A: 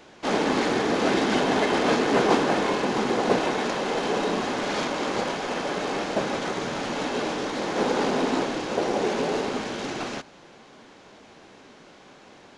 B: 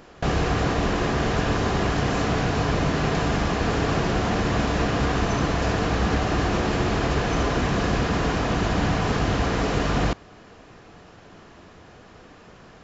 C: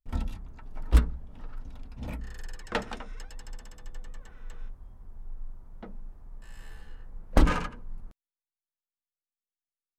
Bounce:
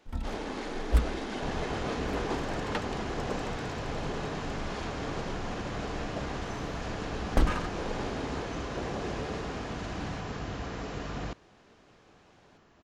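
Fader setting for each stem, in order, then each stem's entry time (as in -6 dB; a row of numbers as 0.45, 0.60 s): -13.5, -14.0, -4.0 dB; 0.00, 1.20, 0.00 s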